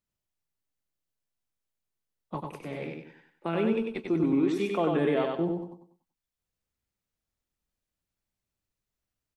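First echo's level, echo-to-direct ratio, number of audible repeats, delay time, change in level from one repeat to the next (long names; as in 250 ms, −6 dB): −3.5 dB, −3.0 dB, 4, 96 ms, −9.0 dB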